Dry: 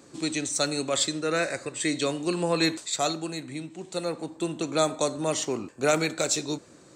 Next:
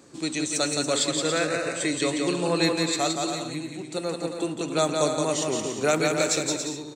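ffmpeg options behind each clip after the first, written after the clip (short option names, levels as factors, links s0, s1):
-af "aecho=1:1:170|280.5|352.3|399|429.4:0.631|0.398|0.251|0.158|0.1"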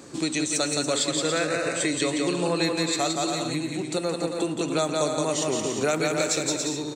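-af "acompressor=threshold=0.0224:ratio=2.5,volume=2.37"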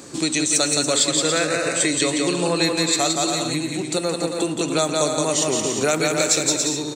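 -af "highshelf=f=3900:g=6,volume=1.5"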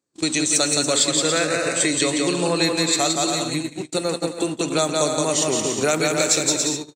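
-af "agate=range=0.00891:threshold=0.0631:ratio=16:detection=peak"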